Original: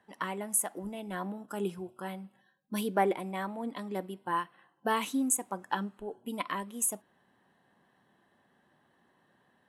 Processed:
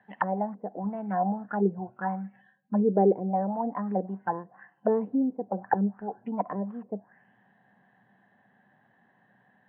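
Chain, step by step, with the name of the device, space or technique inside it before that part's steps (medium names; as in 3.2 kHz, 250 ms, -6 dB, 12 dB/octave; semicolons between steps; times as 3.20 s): envelope filter bass rig (touch-sensitive low-pass 450–4100 Hz down, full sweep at -30 dBFS; cabinet simulation 85–2200 Hz, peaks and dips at 120 Hz +9 dB, 200 Hz +9 dB, 350 Hz -5 dB, 750 Hz +8 dB, 1.2 kHz -5 dB, 1.7 kHz +7 dB)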